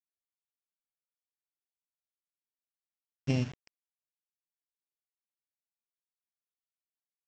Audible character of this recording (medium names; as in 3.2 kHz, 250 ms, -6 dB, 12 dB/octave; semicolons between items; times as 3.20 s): a buzz of ramps at a fixed pitch in blocks of 16 samples; tremolo saw down 0.51 Hz, depth 40%; a quantiser's noise floor 8-bit, dither none; µ-law